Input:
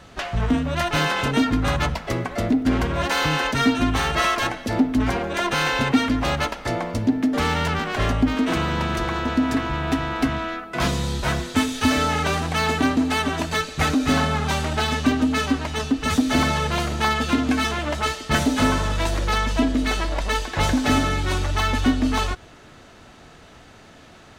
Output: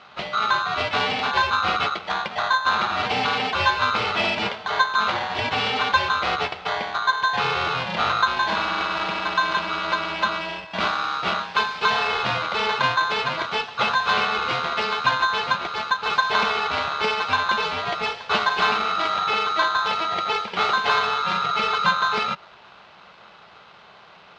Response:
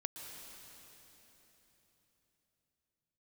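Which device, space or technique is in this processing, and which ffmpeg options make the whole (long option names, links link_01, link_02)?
ring modulator pedal into a guitar cabinet: -af "aeval=exprs='val(0)*sgn(sin(2*PI*1300*n/s))':channel_layout=same,highpass=97,equalizer=frequency=180:width_type=q:width=4:gain=4,equalizer=frequency=280:width_type=q:width=4:gain=-9,equalizer=frequency=780:width_type=q:width=4:gain=5,equalizer=frequency=1800:width_type=q:width=4:gain=-6,lowpass=frequency=4000:width=0.5412,lowpass=frequency=4000:width=1.3066"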